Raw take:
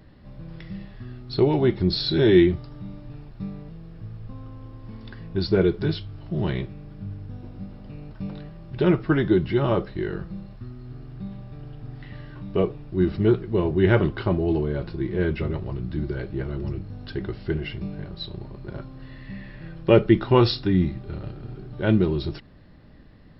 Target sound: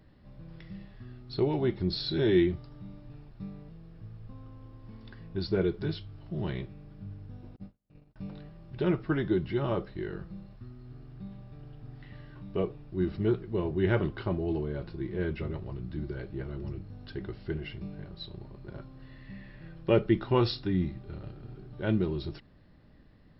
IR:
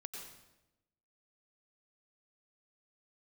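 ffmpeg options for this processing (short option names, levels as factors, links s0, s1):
-filter_complex "[0:a]asettb=1/sr,asplit=3[s0][s1][s2];[s0]atrim=end=7.564[s3];[s1]atrim=start=7.56:end=8.16,asetpts=PTS-STARTPTS,afade=t=in:d=0.004:c=qsin,afade=t=out:st=0.596:d=0.004:c=qsin,agate=range=0.0141:threshold=0.0178:ratio=16:detection=peak[s4];[s2]atrim=start=8.156[s5];[s3][s4]acrossfade=d=0.004:c1=hsin:c2=qsin[s6];[s6][s5]acrossfade=d=0.004:c1=qsin:c2=hsin,volume=0.398"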